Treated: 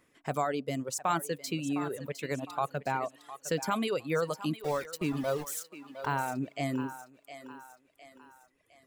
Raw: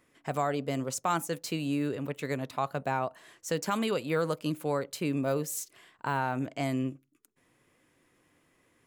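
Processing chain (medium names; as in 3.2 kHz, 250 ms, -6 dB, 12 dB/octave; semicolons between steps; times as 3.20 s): 4.56–6.06 s: small samples zeroed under -35.5 dBFS; thinning echo 709 ms, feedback 46%, high-pass 340 Hz, level -10 dB; reverb removal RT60 1.6 s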